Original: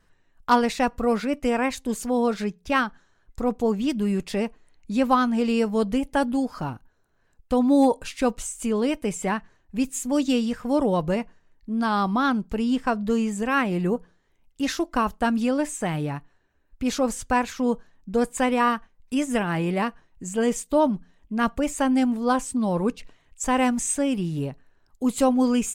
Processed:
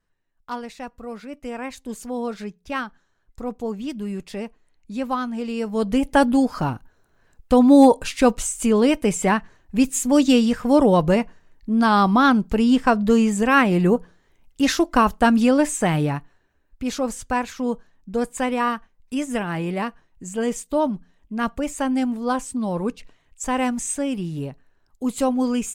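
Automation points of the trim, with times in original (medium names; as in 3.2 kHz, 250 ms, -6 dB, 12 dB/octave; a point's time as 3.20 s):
1.10 s -12 dB
1.92 s -5 dB
5.55 s -5 dB
6.08 s +6.5 dB
16.02 s +6.5 dB
16.84 s -1 dB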